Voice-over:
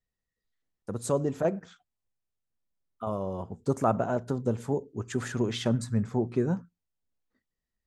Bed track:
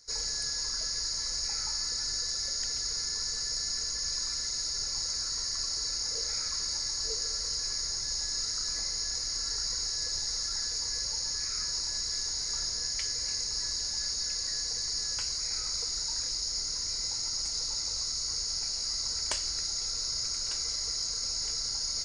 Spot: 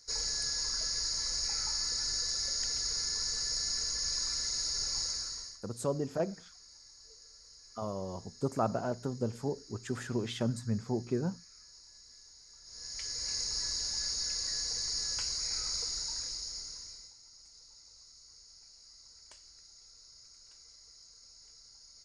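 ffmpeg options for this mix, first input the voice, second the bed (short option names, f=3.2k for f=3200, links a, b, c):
-filter_complex "[0:a]adelay=4750,volume=-5.5dB[a];[1:a]volume=20dB,afade=t=out:st=5:d=0.6:silence=0.0794328,afade=t=in:st=12.64:d=0.75:silence=0.0891251,afade=t=out:st=15.74:d=1.4:silence=0.0841395[b];[a][b]amix=inputs=2:normalize=0"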